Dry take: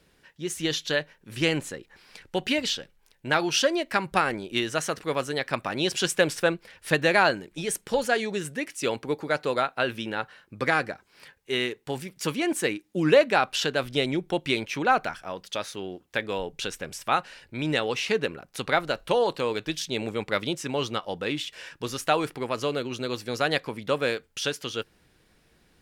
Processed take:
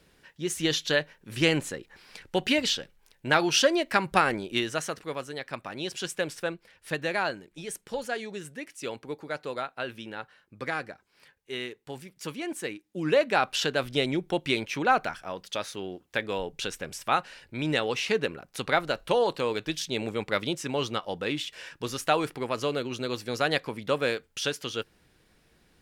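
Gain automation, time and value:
4.4 s +1 dB
5.25 s -8 dB
12.9 s -8 dB
13.45 s -1 dB

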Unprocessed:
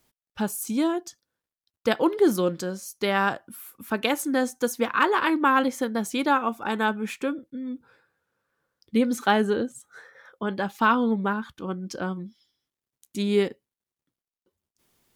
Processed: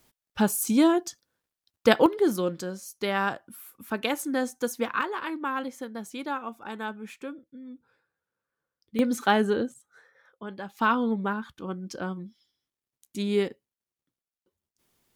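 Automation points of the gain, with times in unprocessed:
+4 dB
from 2.06 s -3.5 dB
from 5.01 s -10 dB
from 8.99 s -1 dB
from 9.74 s -10 dB
from 10.77 s -3 dB

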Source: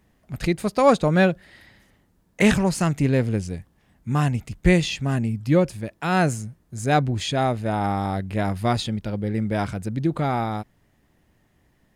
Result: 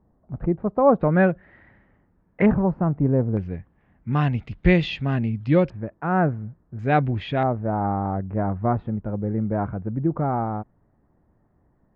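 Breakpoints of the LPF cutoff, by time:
LPF 24 dB/oct
1100 Hz
from 1.01 s 1900 Hz
from 2.46 s 1100 Hz
from 3.37 s 2200 Hz
from 4.13 s 3600 Hz
from 5.7 s 1500 Hz
from 6.79 s 2700 Hz
from 7.43 s 1300 Hz

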